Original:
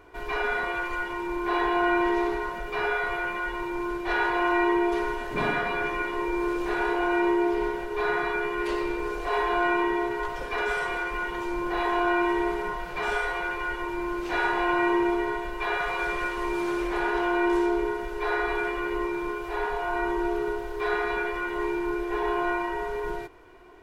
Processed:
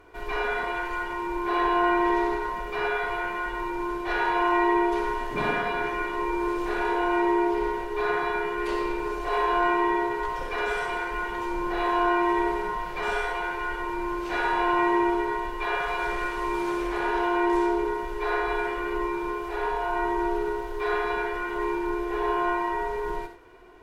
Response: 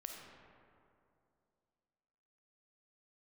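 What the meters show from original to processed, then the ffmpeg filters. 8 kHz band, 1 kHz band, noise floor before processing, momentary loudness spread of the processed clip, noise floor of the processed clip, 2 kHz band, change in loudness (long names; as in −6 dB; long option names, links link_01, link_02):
can't be measured, +2.5 dB, −35 dBFS, 7 LU, −34 dBFS, −1.0 dB, +0.5 dB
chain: -filter_complex "[1:a]atrim=start_sample=2205,atrim=end_sample=3528,asetrate=32193,aresample=44100[link_01];[0:a][link_01]afir=irnorm=-1:irlink=0,volume=3dB"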